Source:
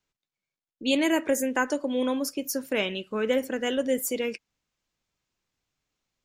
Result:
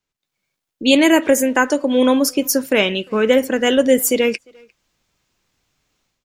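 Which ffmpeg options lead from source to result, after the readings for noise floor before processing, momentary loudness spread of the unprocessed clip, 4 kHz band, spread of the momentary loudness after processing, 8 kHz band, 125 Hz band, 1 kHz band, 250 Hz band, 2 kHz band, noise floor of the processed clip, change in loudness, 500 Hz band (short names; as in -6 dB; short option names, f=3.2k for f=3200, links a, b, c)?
under -85 dBFS, 7 LU, +11.5 dB, 6 LU, +11.5 dB, n/a, +10.5 dB, +11.5 dB, +11.0 dB, -82 dBFS, +11.5 dB, +11.5 dB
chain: -filter_complex "[0:a]dynaudnorm=f=100:g=5:m=13.5dB,asplit=2[a][b];[b]adelay=350,highpass=300,lowpass=3.4k,asoftclip=type=hard:threshold=-13dB,volume=-27dB[c];[a][c]amix=inputs=2:normalize=0"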